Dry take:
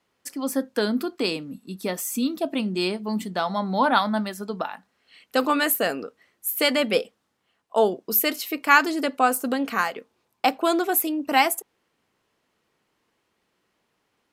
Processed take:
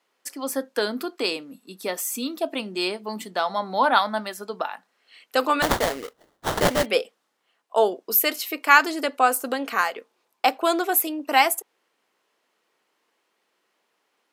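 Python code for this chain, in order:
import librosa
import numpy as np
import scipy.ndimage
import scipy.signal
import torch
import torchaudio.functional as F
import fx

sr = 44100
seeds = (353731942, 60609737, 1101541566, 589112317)

y = scipy.signal.sosfilt(scipy.signal.butter(2, 380.0, 'highpass', fs=sr, output='sos'), x)
y = fx.sample_hold(y, sr, seeds[0], rate_hz=2500.0, jitter_pct=20, at=(5.62, 6.86))
y = F.gain(torch.from_numpy(y), 1.5).numpy()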